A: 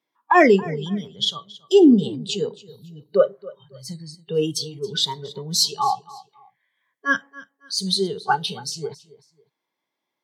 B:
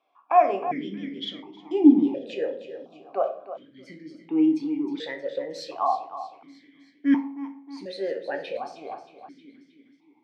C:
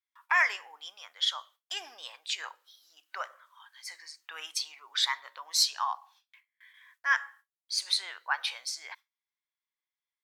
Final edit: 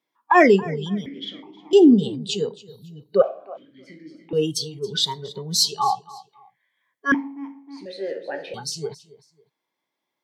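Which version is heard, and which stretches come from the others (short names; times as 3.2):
A
1.06–1.73 from B
3.22–4.33 from B
7.12–8.54 from B
not used: C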